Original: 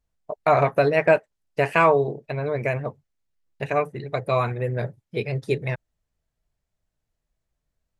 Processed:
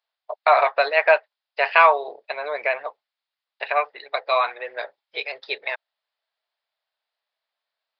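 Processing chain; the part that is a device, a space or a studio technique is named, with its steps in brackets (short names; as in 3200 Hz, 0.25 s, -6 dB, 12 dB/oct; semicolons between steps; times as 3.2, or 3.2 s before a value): 2.02–2.83 low shelf 320 Hz +7.5 dB; musical greeting card (downsampling 11025 Hz; HPF 680 Hz 24 dB/oct; bell 3700 Hz +5 dB 0.54 oct); gain +5 dB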